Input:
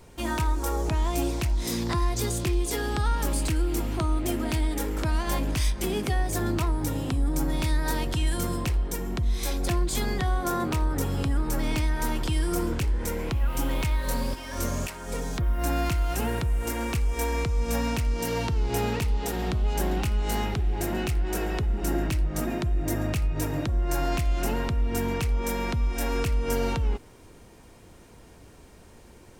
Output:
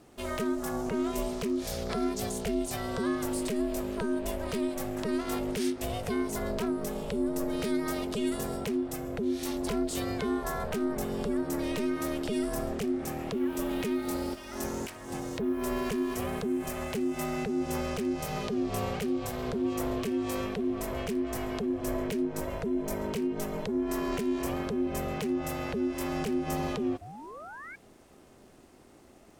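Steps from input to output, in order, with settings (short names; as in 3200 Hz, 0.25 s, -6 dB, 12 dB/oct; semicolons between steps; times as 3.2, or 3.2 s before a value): crackle 28/s -50 dBFS; painted sound rise, 27.01–27.76, 380–2000 Hz -38 dBFS; ring modulator 310 Hz; gain -3 dB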